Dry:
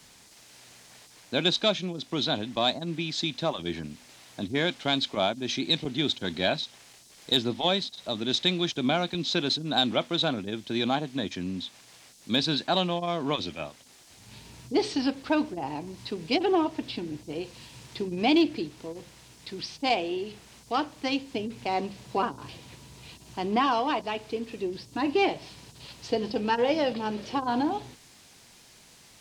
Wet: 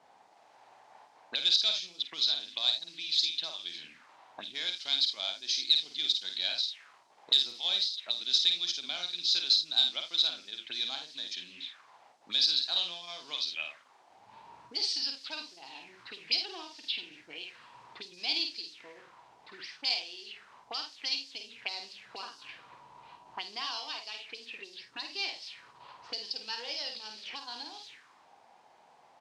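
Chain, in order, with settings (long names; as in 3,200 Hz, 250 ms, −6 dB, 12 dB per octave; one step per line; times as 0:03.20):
0:07.33–0:07.82: surface crackle 65 per second −33 dBFS
ambience of single reflections 51 ms −5.5 dB, 80 ms −15 dB
envelope filter 700–4,800 Hz, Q 3.9, up, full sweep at −26.5 dBFS
level +7.5 dB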